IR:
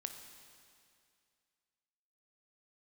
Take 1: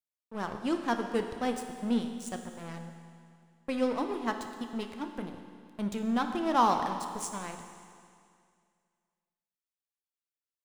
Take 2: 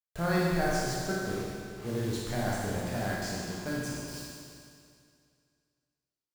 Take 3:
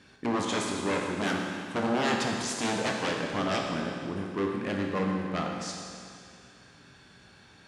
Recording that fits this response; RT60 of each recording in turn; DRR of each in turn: 1; 2.3, 2.3, 2.3 s; 5.5, -6.0, 0.0 dB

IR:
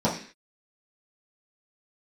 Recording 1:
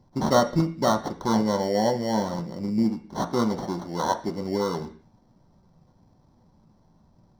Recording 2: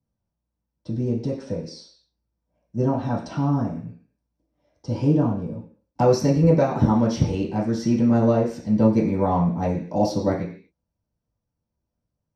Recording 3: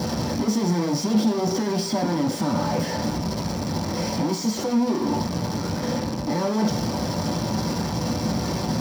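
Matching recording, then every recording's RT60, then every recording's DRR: 2; 0.45, 0.45, 0.45 s; 4.5, -8.5, 0.0 dB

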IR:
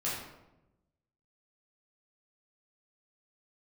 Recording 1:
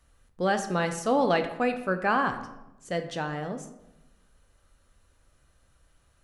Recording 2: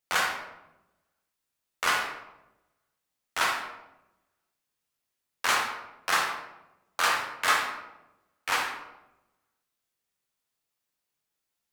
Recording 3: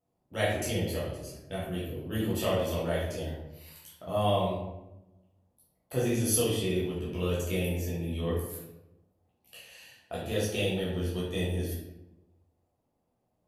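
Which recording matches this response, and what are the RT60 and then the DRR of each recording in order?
3; 0.95, 0.95, 0.95 s; 7.0, -1.0, -8.5 dB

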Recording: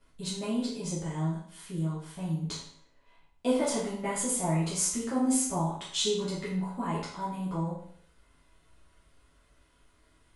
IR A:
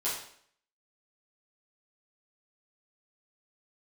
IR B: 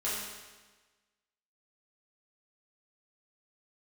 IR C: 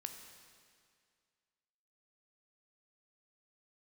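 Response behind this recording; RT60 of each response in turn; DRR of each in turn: A; 0.60, 1.3, 2.1 s; -10.0, -10.0, 5.0 dB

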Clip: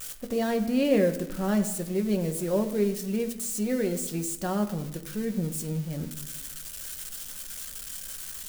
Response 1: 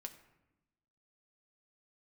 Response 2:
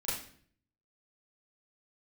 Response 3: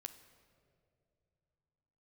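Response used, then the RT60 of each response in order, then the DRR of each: 1; 0.95, 0.55, 2.8 s; 5.0, -10.5, 9.0 dB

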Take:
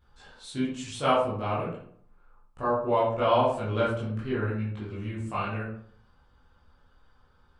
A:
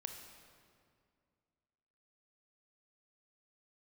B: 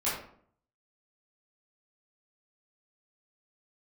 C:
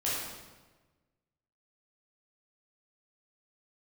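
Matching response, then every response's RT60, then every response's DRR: B; 2.2, 0.60, 1.3 s; 4.5, -10.5, -8.5 dB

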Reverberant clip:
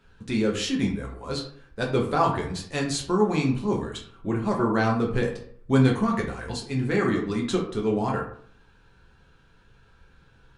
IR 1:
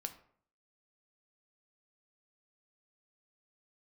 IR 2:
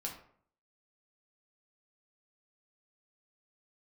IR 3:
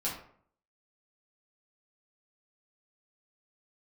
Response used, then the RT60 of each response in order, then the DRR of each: 2; 0.60, 0.60, 0.60 s; 6.5, -1.0, -6.5 dB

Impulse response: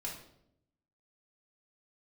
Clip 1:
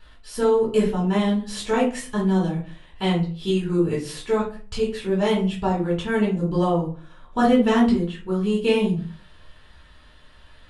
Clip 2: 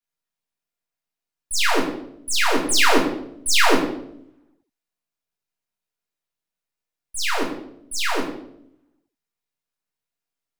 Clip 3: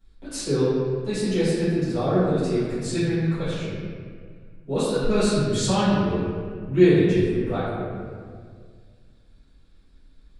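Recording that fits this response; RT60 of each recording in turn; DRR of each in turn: 2; 0.40, 0.75, 1.9 s; -7.0, -4.0, -16.5 dB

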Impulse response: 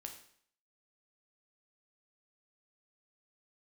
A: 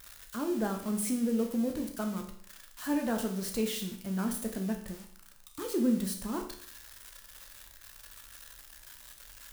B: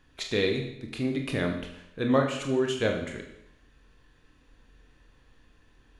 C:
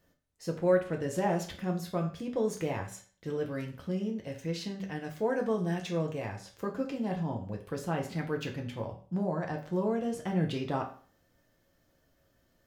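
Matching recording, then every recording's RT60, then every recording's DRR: A; 0.60, 0.80, 0.45 s; 3.5, 2.0, 1.0 dB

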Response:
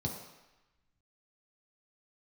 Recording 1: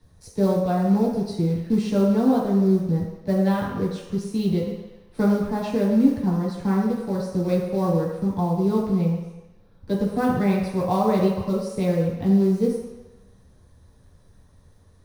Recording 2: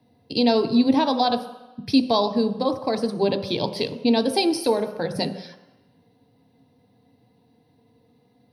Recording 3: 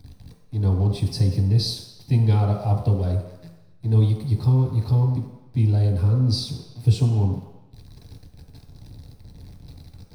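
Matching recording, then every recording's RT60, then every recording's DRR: 3; 1.0, 1.0, 1.0 s; -7.0, 7.5, -0.5 dB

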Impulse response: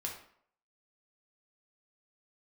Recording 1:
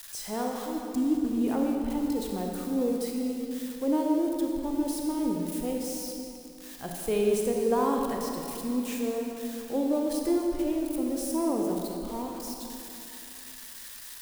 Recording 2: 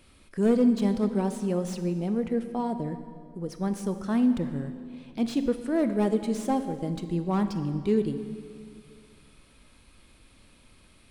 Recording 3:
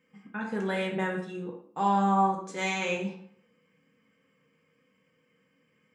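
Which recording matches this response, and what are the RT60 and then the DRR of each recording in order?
3; 2.9, 2.1, 0.65 s; 0.5, 8.5, -1.5 dB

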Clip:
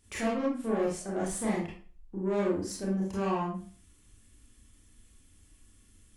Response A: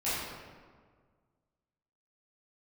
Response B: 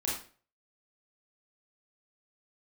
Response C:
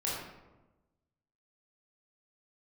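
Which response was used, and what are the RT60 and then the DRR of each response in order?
B; 1.7, 0.40, 1.1 s; -13.0, -5.5, -6.5 dB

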